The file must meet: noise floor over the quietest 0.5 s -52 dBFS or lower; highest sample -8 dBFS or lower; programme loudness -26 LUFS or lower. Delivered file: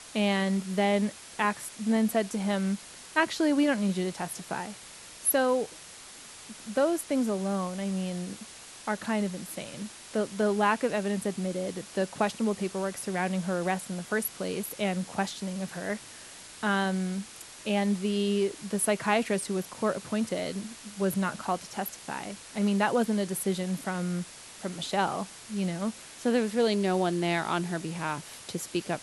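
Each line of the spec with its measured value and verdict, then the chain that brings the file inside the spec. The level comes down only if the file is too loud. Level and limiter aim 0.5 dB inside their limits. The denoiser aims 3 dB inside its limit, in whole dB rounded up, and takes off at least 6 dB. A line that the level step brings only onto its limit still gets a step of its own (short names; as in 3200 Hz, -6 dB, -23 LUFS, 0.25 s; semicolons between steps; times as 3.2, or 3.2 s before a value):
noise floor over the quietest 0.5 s -47 dBFS: fail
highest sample -9.5 dBFS: OK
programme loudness -30.0 LUFS: OK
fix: denoiser 8 dB, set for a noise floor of -47 dBFS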